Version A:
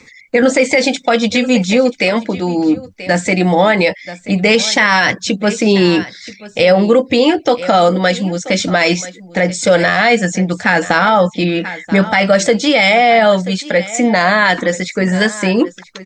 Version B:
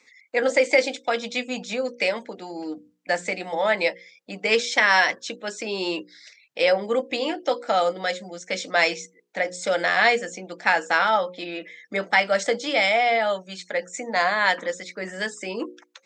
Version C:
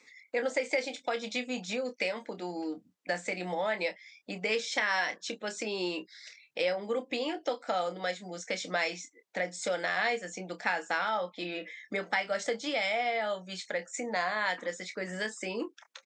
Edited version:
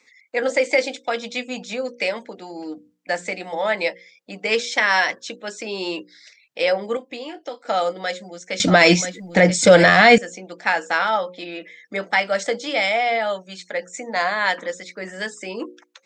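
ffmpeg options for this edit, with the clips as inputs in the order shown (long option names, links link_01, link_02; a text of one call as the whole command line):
ffmpeg -i take0.wav -i take1.wav -i take2.wav -filter_complex "[1:a]asplit=3[link_01][link_02][link_03];[link_01]atrim=end=6.972[link_04];[2:a]atrim=start=6.968:end=7.652[link_05];[link_02]atrim=start=7.648:end=8.602[link_06];[0:a]atrim=start=8.598:end=10.182[link_07];[link_03]atrim=start=10.178[link_08];[link_04][link_05]acrossfade=duration=0.004:curve1=hsin:curve2=hsin[link_09];[link_09][link_06]acrossfade=duration=0.004:curve1=hsin:curve2=hsin[link_10];[link_10][link_07]acrossfade=duration=0.004:curve1=hsin:curve2=hsin[link_11];[link_11][link_08]acrossfade=duration=0.004:curve1=hsin:curve2=hsin" out.wav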